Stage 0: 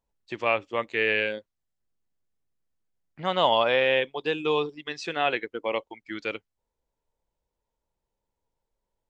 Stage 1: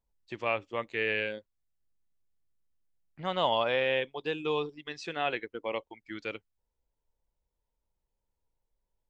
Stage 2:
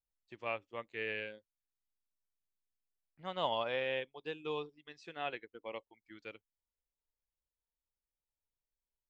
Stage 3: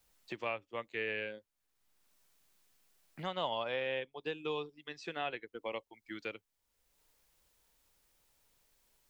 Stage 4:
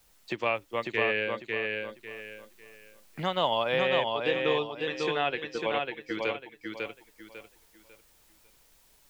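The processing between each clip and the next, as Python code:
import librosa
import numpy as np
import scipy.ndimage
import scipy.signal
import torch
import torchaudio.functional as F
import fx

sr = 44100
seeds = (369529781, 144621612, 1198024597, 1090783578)

y1 = fx.low_shelf(x, sr, hz=100.0, db=9.5)
y1 = y1 * librosa.db_to_amplitude(-6.0)
y2 = fx.upward_expand(y1, sr, threshold_db=-43.0, expansion=1.5)
y2 = y2 * librosa.db_to_amplitude(-6.0)
y3 = fx.band_squash(y2, sr, depth_pct=70)
y3 = y3 * librosa.db_to_amplitude(1.5)
y4 = fx.echo_feedback(y3, sr, ms=548, feedback_pct=29, wet_db=-3.5)
y4 = y4 * librosa.db_to_amplitude(9.0)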